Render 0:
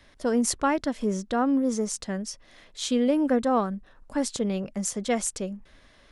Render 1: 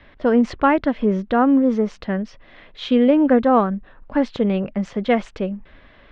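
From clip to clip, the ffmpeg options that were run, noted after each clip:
-af "lowpass=f=3100:w=0.5412,lowpass=f=3100:w=1.3066,volume=2.51"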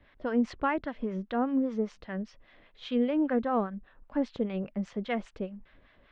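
-filter_complex "[0:a]acrossover=split=750[s0][s1];[s0]aeval=exprs='val(0)*(1-0.7/2+0.7/2*cos(2*PI*5*n/s))':c=same[s2];[s1]aeval=exprs='val(0)*(1-0.7/2-0.7/2*cos(2*PI*5*n/s))':c=same[s3];[s2][s3]amix=inputs=2:normalize=0,volume=0.355"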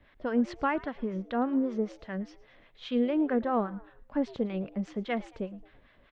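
-filter_complex "[0:a]asplit=4[s0][s1][s2][s3];[s1]adelay=111,afreqshift=110,volume=0.0891[s4];[s2]adelay=222,afreqshift=220,volume=0.0347[s5];[s3]adelay=333,afreqshift=330,volume=0.0135[s6];[s0][s4][s5][s6]amix=inputs=4:normalize=0"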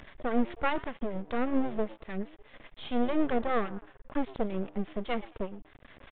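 -af "aeval=exprs='max(val(0),0)':c=same,aresample=8000,aresample=44100,acompressor=mode=upward:threshold=0.00708:ratio=2.5,volume=1.68"

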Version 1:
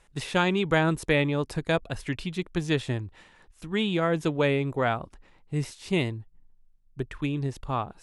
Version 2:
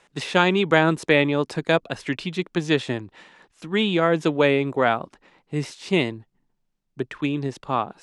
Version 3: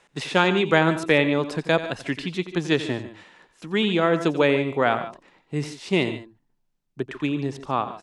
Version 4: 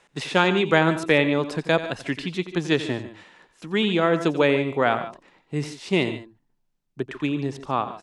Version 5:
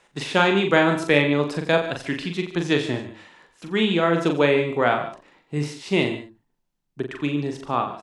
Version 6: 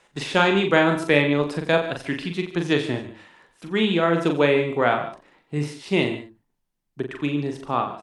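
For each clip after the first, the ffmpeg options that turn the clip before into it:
-filter_complex "[0:a]acrossover=split=150 7800:gain=0.0708 1 0.224[s0][s1][s2];[s0][s1][s2]amix=inputs=3:normalize=0,volume=2"
-af "aecho=1:1:88|144|147:0.211|0.106|0.168,volume=0.891"
-af anull
-filter_complex "[0:a]asplit=2[s0][s1];[s1]adelay=41,volume=0.531[s2];[s0][s2]amix=inputs=2:normalize=0"
-ar 48000 -c:a libopus -b:a 48k

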